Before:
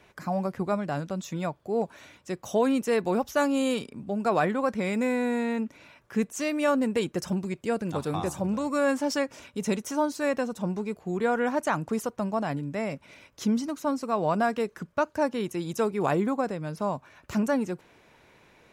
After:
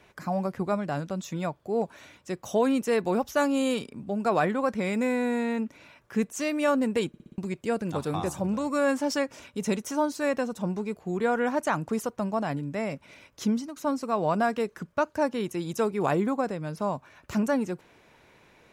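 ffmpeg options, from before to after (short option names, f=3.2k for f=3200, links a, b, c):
-filter_complex "[0:a]asplit=7[a][b][c][d][e][f][g];[a]atrim=end=7.142[h];[b]atrim=start=7.078:end=7.142[i];[c]atrim=start=7.078:end=7.142[j];[d]atrim=start=7.078:end=7.142[k];[e]atrim=start=7.078:end=7.142[l];[f]atrim=start=7.378:end=13.76,asetpts=PTS-STARTPTS,afade=t=out:st=6.102:d=0.28:silence=0.298538[m];[g]atrim=start=13.76,asetpts=PTS-STARTPTS,afade=t=in:d=0.004:c=hsin:silence=0.298538[n];[h][i]acrossfade=d=0.004:c1=hsin:c2=hsin[o];[o][j]acrossfade=d=0.004:c1=hsin:c2=hsin[p];[p][k]acrossfade=d=0.004:c1=hsin:c2=hsin[q];[q][l]acrossfade=d=0.004:c1=hsin:c2=hsin[r];[m][n]concat=n=2:v=0:a=1[s];[r][s]acrossfade=d=0.004:c1=hsin:c2=hsin"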